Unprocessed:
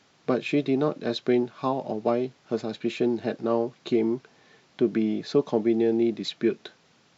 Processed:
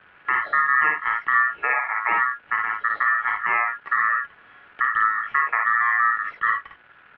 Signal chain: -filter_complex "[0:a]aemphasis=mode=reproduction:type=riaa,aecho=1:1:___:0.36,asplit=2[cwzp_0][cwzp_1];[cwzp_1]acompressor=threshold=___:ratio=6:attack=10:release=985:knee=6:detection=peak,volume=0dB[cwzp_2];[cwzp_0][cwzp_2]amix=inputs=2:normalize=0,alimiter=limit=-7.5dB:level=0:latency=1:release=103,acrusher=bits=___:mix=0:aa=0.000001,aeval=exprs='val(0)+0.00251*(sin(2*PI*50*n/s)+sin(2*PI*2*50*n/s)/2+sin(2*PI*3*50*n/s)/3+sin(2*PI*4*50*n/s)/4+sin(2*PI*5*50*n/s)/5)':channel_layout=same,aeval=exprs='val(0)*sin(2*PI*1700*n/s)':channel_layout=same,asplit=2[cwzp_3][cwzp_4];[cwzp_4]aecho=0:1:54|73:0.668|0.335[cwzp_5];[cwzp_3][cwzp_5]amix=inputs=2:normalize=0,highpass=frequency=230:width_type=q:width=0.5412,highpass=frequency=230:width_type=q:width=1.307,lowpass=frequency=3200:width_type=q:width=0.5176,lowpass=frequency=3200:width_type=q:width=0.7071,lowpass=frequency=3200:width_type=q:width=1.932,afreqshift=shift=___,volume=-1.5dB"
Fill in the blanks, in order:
7.4, -26dB, 7, -170